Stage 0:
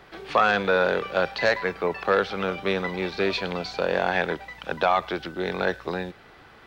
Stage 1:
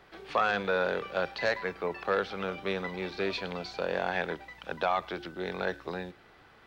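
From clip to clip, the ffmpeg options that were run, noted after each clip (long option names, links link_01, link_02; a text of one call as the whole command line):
ffmpeg -i in.wav -af "bandreject=frequency=70.67:width_type=h:width=4,bandreject=frequency=141.34:width_type=h:width=4,bandreject=frequency=212.01:width_type=h:width=4,bandreject=frequency=282.68:width_type=h:width=4,bandreject=frequency=353.35:width_type=h:width=4,volume=-7dB" out.wav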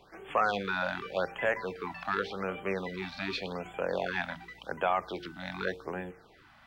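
ffmpeg -i in.wav -af "bandreject=frequency=57.06:width_type=h:width=4,bandreject=frequency=114.12:width_type=h:width=4,bandreject=frequency=171.18:width_type=h:width=4,bandreject=frequency=228.24:width_type=h:width=4,bandreject=frequency=285.3:width_type=h:width=4,bandreject=frequency=342.36:width_type=h:width=4,bandreject=frequency=399.42:width_type=h:width=4,bandreject=frequency=456.48:width_type=h:width=4,afftfilt=real='re*(1-between(b*sr/1024,390*pow(5000/390,0.5+0.5*sin(2*PI*0.87*pts/sr))/1.41,390*pow(5000/390,0.5+0.5*sin(2*PI*0.87*pts/sr))*1.41))':imag='im*(1-between(b*sr/1024,390*pow(5000/390,0.5+0.5*sin(2*PI*0.87*pts/sr))/1.41,390*pow(5000/390,0.5+0.5*sin(2*PI*0.87*pts/sr))*1.41))':win_size=1024:overlap=0.75" out.wav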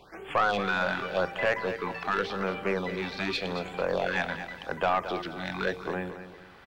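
ffmpeg -i in.wav -af "aeval=exprs='(tanh(12.6*val(0)+0.2)-tanh(0.2))/12.6':channel_layout=same,aecho=1:1:223|446|669|892:0.282|0.101|0.0365|0.0131,volume=5dB" out.wav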